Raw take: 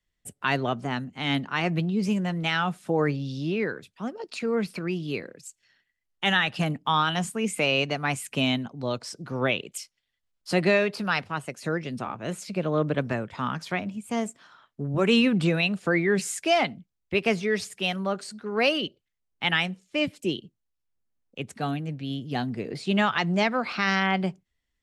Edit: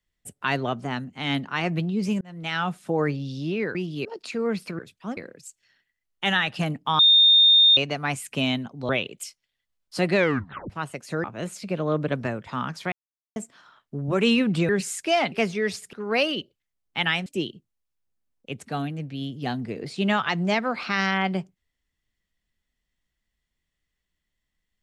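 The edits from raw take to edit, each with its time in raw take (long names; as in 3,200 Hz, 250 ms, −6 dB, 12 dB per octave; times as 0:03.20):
0:02.21–0:02.63: fade in
0:03.75–0:04.13: swap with 0:04.87–0:05.17
0:06.99–0:07.77: beep over 3,650 Hz −12 dBFS
0:08.89–0:09.43: remove
0:10.70: tape stop 0.54 s
0:11.78–0:12.10: remove
0:13.78–0:14.22: silence
0:15.55–0:16.08: remove
0:16.71–0:17.20: remove
0:17.81–0:18.39: remove
0:19.72–0:20.15: remove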